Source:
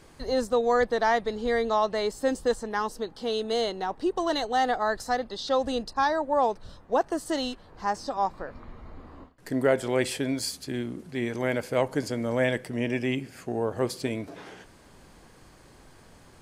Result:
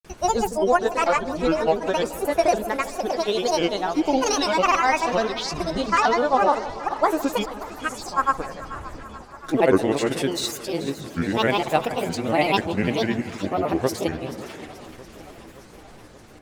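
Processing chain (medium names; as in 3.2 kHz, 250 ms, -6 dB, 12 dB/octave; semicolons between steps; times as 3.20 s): sawtooth pitch modulation +3.5 st, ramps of 504 ms; granulator, pitch spread up and down by 7 st; two-band feedback delay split 1 kHz, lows 161 ms, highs 433 ms, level -14 dB; modulated delay 575 ms, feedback 66%, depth 129 cents, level -18.5 dB; trim +7.5 dB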